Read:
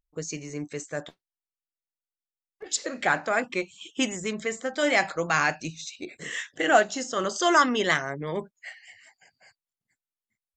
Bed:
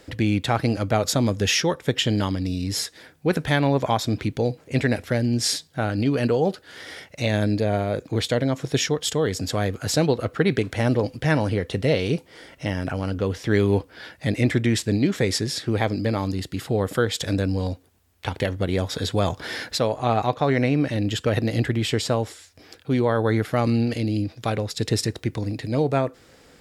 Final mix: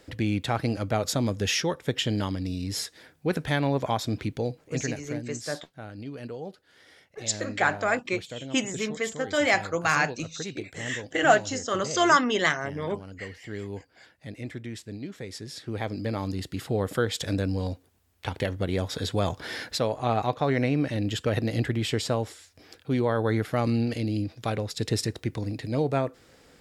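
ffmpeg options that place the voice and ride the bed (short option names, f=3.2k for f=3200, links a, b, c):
-filter_complex "[0:a]adelay=4550,volume=0dB[a];[1:a]volume=7.5dB,afade=t=out:st=4.27:d=0.99:silence=0.266073,afade=t=in:st=15.31:d=1.14:silence=0.237137[b];[a][b]amix=inputs=2:normalize=0"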